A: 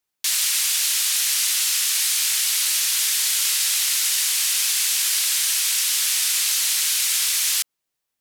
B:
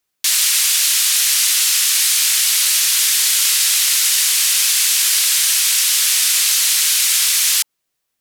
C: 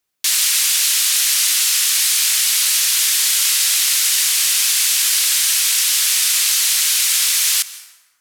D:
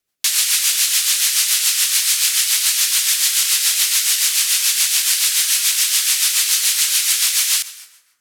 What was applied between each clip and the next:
notch filter 880 Hz, Q 13; level +6 dB
dense smooth reverb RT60 1.3 s, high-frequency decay 0.6×, pre-delay 120 ms, DRR 15.5 dB; level −1 dB
rotating-speaker cabinet horn 7 Hz; level +2 dB

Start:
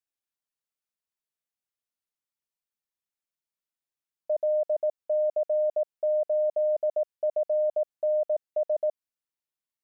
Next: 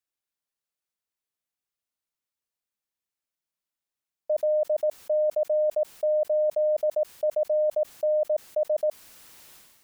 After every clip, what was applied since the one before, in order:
level that may fall only so fast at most 42 dB per second
level +1.5 dB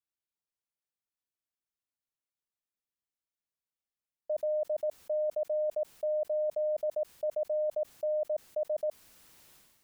low-shelf EQ 350 Hz +5.5 dB
level −8.5 dB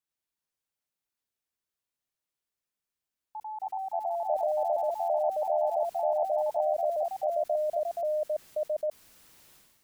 delay with pitch and tempo change per echo 104 ms, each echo +2 semitones, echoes 3
level +1.5 dB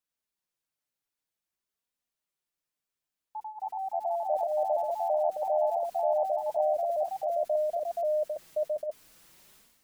flanger 0.51 Hz, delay 3.8 ms, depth 3.6 ms, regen −29%
level +3.5 dB

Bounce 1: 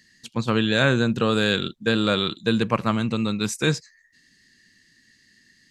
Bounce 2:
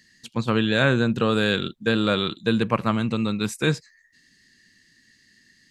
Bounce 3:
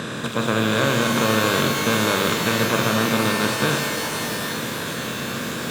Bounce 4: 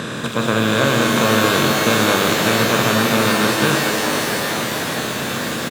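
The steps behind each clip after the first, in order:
dynamic equaliser 6,000 Hz, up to −7 dB, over −45 dBFS, Q 1.4
compressor on every frequency bin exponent 0.2; reverb with rising layers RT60 2.7 s, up +12 semitones, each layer −2 dB, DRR 5 dB; level −7 dB
echo with shifted repeats 443 ms, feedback 60%, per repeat +100 Hz, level −7 dB; level +3 dB

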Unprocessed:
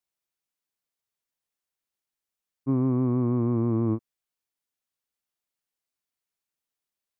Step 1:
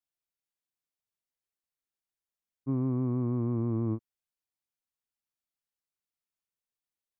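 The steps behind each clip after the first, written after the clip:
low-shelf EQ 160 Hz +5.5 dB
level −7.5 dB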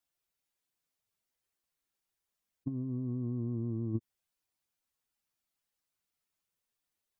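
expanding power law on the bin magnitudes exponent 1.5
compressor whose output falls as the input rises −33 dBFS, ratio −0.5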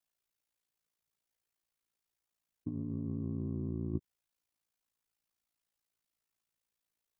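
ring modulation 28 Hz
level +1 dB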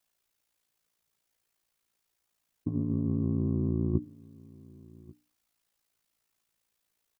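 mains-hum notches 60/120/180/240/300 Hz
single-tap delay 1,139 ms −23 dB
level +8.5 dB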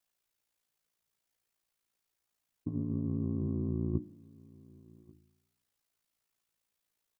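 flanger 0.29 Hz, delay 9.5 ms, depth 9.1 ms, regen −87%

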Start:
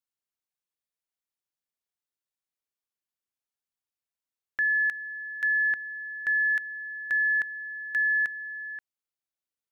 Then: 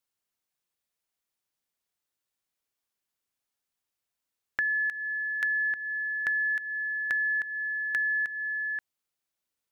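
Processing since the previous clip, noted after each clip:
downward compressor, threshold −33 dBFS, peak gain reduction 9 dB
level +6 dB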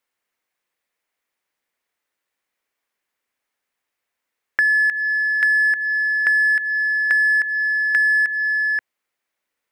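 octave-band graphic EQ 125/250/500/1,000/2,000 Hz −4/+4/+7/+5/+11 dB
in parallel at −9 dB: gain into a clipping stage and back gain 23.5 dB
on the sum: level −1 dB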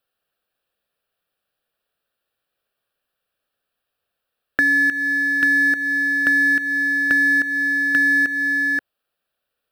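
phaser with its sweep stopped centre 1,400 Hz, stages 8
in parallel at −11.5 dB: sample-rate reduction 2,000 Hz, jitter 0%
on the sum: level +3.5 dB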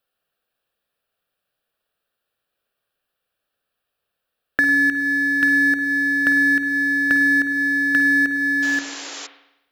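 sound drawn into the spectrogram noise, 0:08.62–0:09.27, 270–7,500 Hz −34 dBFS
on a send at −9.5 dB: convolution reverb RT60 0.90 s, pre-delay 50 ms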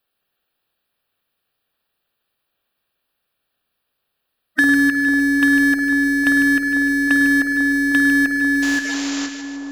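spectral magnitudes quantised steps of 30 dB
echo with a time of its own for lows and highs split 1,200 Hz, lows 497 ms, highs 151 ms, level −8 dB
soft clipping −9 dBFS, distortion −26 dB
level +4.5 dB

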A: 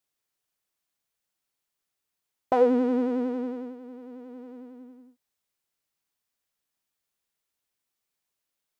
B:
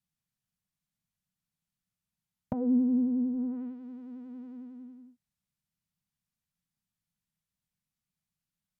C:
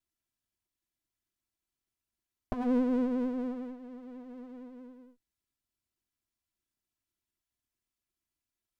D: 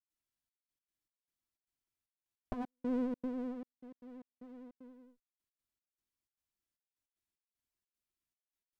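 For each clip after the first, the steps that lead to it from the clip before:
notch filter 450 Hz, Q 14; treble cut that deepens with the level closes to 430 Hz, closed at −25.5 dBFS; low shelf with overshoot 260 Hz +13.5 dB, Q 3; level −7.5 dB
lower of the sound and its delayed copy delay 3 ms
gate pattern ".xxxx..x.xx..xxx" 153 BPM −60 dB; level −5 dB

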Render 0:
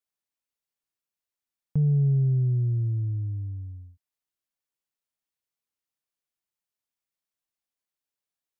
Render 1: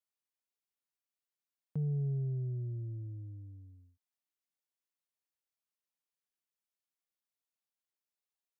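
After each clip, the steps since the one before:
Bessel high-pass filter 200 Hz, order 2
level −6 dB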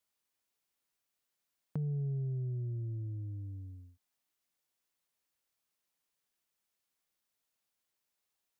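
downward compressor 2 to 1, threshold −49 dBFS, peak gain reduction 10 dB
level +8 dB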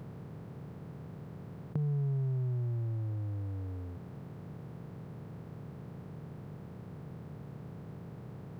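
compressor on every frequency bin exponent 0.2
level +1.5 dB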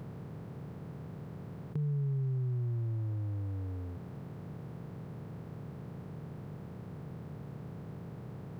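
soft clipping −28.5 dBFS, distortion −19 dB
level +1.5 dB

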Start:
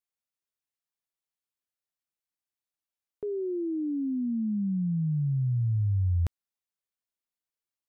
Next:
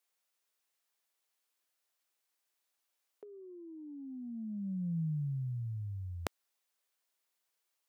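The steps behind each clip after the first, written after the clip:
high-pass filter 400 Hz 12 dB per octave
compressor whose output falls as the input rises −43 dBFS, ratio −0.5
level +5 dB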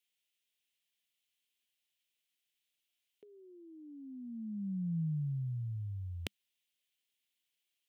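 drawn EQ curve 200 Hz 0 dB, 1,200 Hz −18 dB, 2,000 Hz −2 dB, 3,100 Hz +7 dB, 4,700 Hz −4 dB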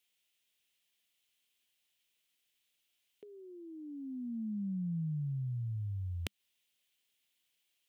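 downward compressor 3 to 1, threshold −42 dBFS, peak gain reduction 7 dB
level +5.5 dB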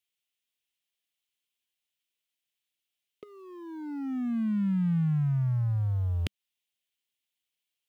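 leveller curve on the samples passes 3
level −1.5 dB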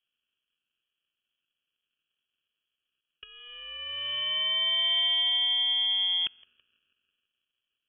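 feedback echo with a band-pass in the loop 164 ms, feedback 72%, band-pass 870 Hz, level −14.5 dB
decimation without filtering 36×
voice inversion scrambler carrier 3,300 Hz

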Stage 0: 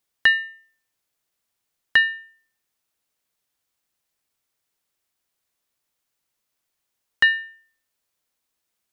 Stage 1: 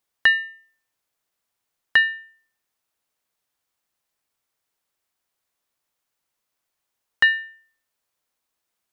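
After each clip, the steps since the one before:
parametric band 940 Hz +4 dB 2 octaves
level −2 dB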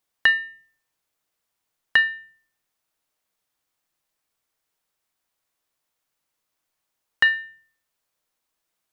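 rectangular room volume 280 cubic metres, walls furnished, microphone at 0.55 metres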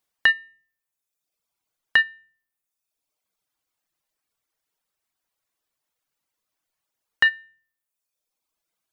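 reverb reduction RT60 1.2 s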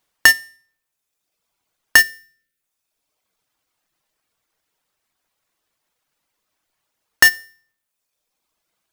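each half-wave held at its own peak
gain on a spectral selection 0:02.00–0:02.61, 610–1,300 Hz −25 dB
level +4 dB

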